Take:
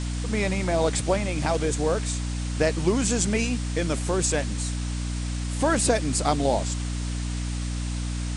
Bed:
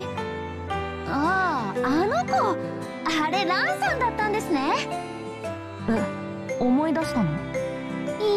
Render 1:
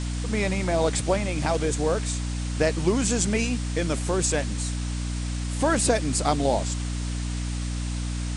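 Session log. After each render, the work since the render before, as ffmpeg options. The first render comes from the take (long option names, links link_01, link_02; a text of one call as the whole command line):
ffmpeg -i in.wav -af anull out.wav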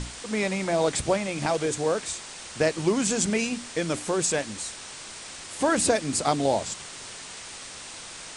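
ffmpeg -i in.wav -af "bandreject=frequency=60:width_type=h:width=6,bandreject=frequency=120:width_type=h:width=6,bandreject=frequency=180:width_type=h:width=6,bandreject=frequency=240:width_type=h:width=6,bandreject=frequency=300:width_type=h:width=6" out.wav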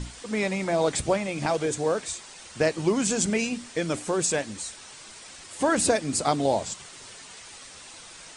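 ffmpeg -i in.wav -af "afftdn=noise_reduction=7:noise_floor=-41" out.wav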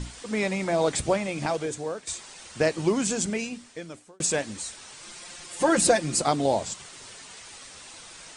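ffmpeg -i in.wav -filter_complex "[0:a]asettb=1/sr,asplit=3[link_01][link_02][link_03];[link_01]atrim=end=5.024[link_04];[link_02]atrim=start=5.02:end=6.22,asetpts=PTS-STARTPTS,afade=type=in:duration=0.004:curve=qsin,afade=type=out:start_time=1.196:duration=0.004:curve=qsin,aecho=1:1:5.7:0.77,atrim=end_sample=52920[link_05];[link_03]atrim=start=6.216[link_06];[link_04][link_05]acrossfade=duration=0.004:curve1=hsin:curve2=qsin[link_07];[link_07][link_06]acrossfade=duration=0.004:curve1=qsin:curve2=hsin,asplit=3[link_08][link_09][link_10];[link_08]atrim=end=2.07,asetpts=PTS-STARTPTS,afade=type=out:start_time=1.3:duration=0.77:silence=0.281838[link_11];[link_09]atrim=start=2.07:end=4.2,asetpts=PTS-STARTPTS,afade=type=in:duration=0.004:curve=hsin:silence=0.281838,afade=type=out:start_time=0.81:duration=1.32[link_12];[link_10]atrim=start=4.2,asetpts=PTS-STARTPTS,afade=type=in:duration=0.004:curve=hsin[link_13];[link_11][link_12][link_13]concat=n=3:v=0:a=1" out.wav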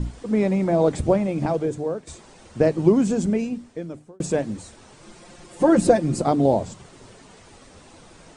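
ffmpeg -i in.wav -af "tiltshelf=frequency=970:gain=10,bandreject=frequency=50:width_type=h:width=6,bandreject=frequency=100:width_type=h:width=6,bandreject=frequency=150:width_type=h:width=6" out.wav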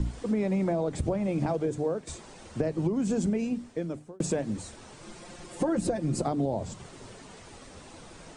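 ffmpeg -i in.wav -filter_complex "[0:a]acrossover=split=130[link_01][link_02];[link_02]alimiter=limit=-14dB:level=0:latency=1:release=357[link_03];[link_01][link_03]amix=inputs=2:normalize=0,acompressor=threshold=-24dB:ratio=6" out.wav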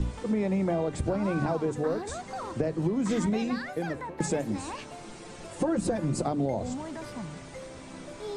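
ffmpeg -i in.wav -i bed.wav -filter_complex "[1:a]volume=-15dB[link_01];[0:a][link_01]amix=inputs=2:normalize=0" out.wav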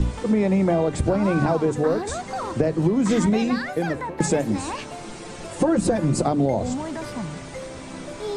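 ffmpeg -i in.wav -af "volume=7.5dB" out.wav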